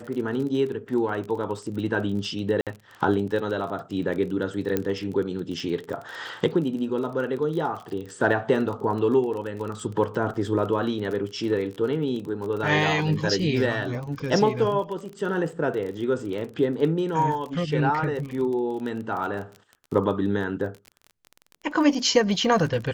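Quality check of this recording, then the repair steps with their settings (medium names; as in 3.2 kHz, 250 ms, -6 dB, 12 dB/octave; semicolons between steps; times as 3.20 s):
crackle 32 per s -32 dBFS
2.61–2.67 s: dropout 57 ms
4.77 s: pop -11 dBFS
10.34–10.35 s: dropout 6.3 ms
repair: de-click; interpolate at 2.61 s, 57 ms; interpolate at 10.34 s, 6.3 ms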